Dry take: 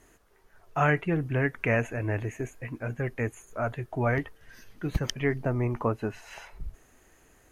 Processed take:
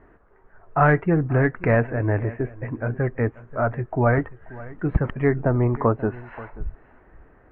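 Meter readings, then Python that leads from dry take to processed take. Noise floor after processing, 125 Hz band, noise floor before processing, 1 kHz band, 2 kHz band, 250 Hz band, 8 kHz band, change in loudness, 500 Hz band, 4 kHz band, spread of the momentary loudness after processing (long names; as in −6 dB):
−55 dBFS, +7.5 dB, −61 dBFS, +7.5 dB, +4.0 dB, +7.5 dB, below −35 dB, +7.0 dB, +7.5 dB, below −10 dB, 17 LU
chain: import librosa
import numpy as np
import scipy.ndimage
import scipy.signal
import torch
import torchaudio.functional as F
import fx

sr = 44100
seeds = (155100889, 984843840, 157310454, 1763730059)

y = fx.tracing_dist(x, sr, depth_ms=0.21)
y = scipy.signal.sosfilt(scipy.signal.butter(4, 1700.0, 'lowpass', fs=sr, output='sos'), y)
y = y + 10.0 ** (-19.0 / 20.0) * np.pad(y, (int(534 * sr / 1000.0), 0))[:len(y)]
y = y * 10.0 ** (7.5 / 20.0)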